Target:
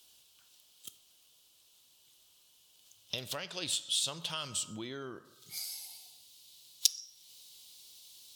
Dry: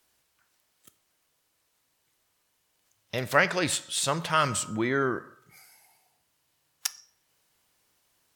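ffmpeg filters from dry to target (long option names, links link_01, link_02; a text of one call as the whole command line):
ffmpeg -i in.wav -af "acompressor=threshold=-47dB:ratio=2.5,asetnsamples=nb_out_samples=441:pad=0,asendcmd='5.25 highshelf g 14',highshelf=frequency=2500:width_type=q:width=3:gain=8" out.wav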